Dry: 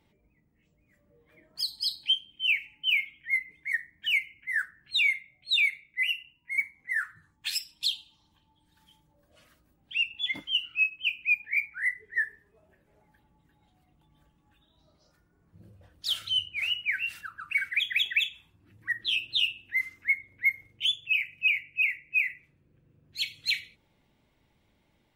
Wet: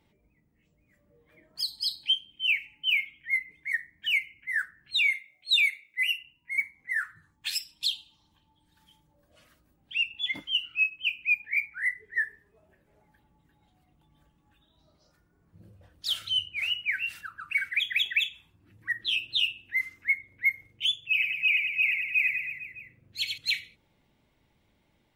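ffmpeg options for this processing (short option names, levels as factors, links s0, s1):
-filter_complex "[0:a]asettb=1/sr,asplit=3[s0][s1][s2];[s0]atrim=end=5.124[s3];[s1]atrim=start=5.12:end=6.18,asetpts=PTS-STARTPTS,afade=t=in:d=0.004:c=qsin,afade=t=out:st=1.056:d=0.004:c=qsin,bass=f=250:g=-14,treble=f=4000:g=6[s4];[s2]atrim=start=6.176[s5];[s3][s4]acrossfade=d=0.004:c1=hsin:c2=qsin[s6];[s6][s5]acrossfade=d=0.004:c1=qsin:c2=hsin,asettb=1/sr,asplit=3[s7][s8][s9];[s7]atrim=end=21.054[s10];[s8]atrim=start=21.05:end=23.38,asetpts=PTS-STARTPTS,afade=t=in:d=0.004:c=qsin,afade=t=out:st=2.326:d=0.004:c=qsin,aecho=1:1:90|193.5|312.5|449.4|606.8:0.631|0.398|0.251|0.158|0.1,atrim=end_sample=102753[s11];[s9]atrim=start=23.376[s12];[s10][s11]acrossfade=d=0.004:c1=hsin:c2=qsin[s13];[s13][s12]acrossfade=d=0.004:c1=qsin:c2=hsin"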